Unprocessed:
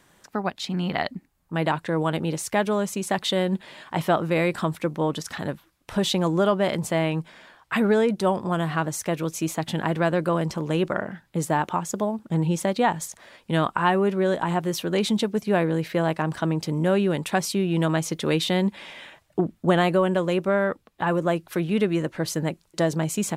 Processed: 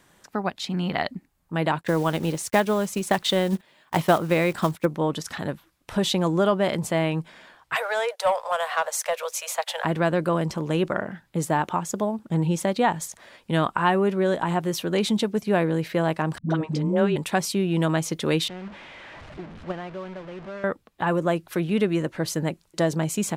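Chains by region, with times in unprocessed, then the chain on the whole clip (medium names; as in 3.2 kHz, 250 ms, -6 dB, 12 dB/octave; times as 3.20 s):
1.81–4.87 s: block-companded coder 5-bit + gate -39 dBFS, range -13 dB + transient shaper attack +4 dB, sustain -1 dB
7.75–9.85 s: steep high-pass 490 Hz 96 dB/octave + waveshaping leveller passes 1
16.38–17.16 s: distance through air 88 m + phase dispersion highs, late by 123 ms, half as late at 360 Hz
18.48–20.64 s: one-bit delta coder 64 kbps, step -20 dBFS + low-pass 2.6 kHz + gate -15 dBFS, range -15 dB
whole clip: none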